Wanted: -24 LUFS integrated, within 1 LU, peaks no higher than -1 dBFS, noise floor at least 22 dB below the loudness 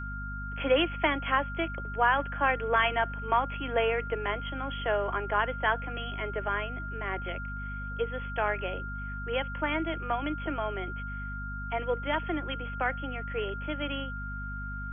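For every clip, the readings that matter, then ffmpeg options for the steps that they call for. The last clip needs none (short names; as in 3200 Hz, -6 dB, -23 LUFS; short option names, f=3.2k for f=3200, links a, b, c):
hum 50 Hz; harmonics up to 250 Hz; hum level -36 dBFS; steady tone 1400 Hz; tone level -38 dBFS; loudness -31.0 LUFS; peak -12.0 dBFS; loudness target -24.0 LUFS
-> -af "bandreject=f=50:t=h:w=4,bandreject=f=100:t=h:w=4,bandreject=f=150:t=h:w=4,bandreject=f=200:t=h:w=4,bandreject=f=250:t=h:w=4"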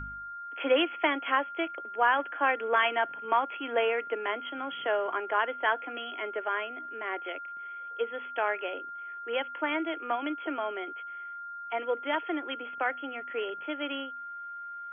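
hum none; steady tone 1400 Hz; tone level -38 dBFS
-> -af "bandreject=f=1.4k:w=30"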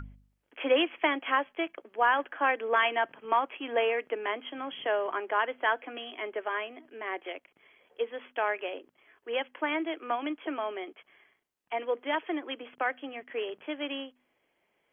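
steady tone none; loudness -31.0 LUFS; peak -12.5 dBFS; loudness target -24.0 LUFS
-> -af "volume=7dB"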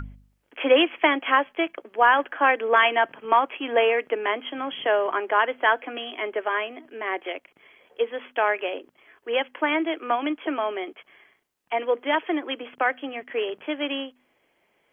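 loudness -24.0 LUFS; peak -5.5 dBFS; noise floor -69 dBFS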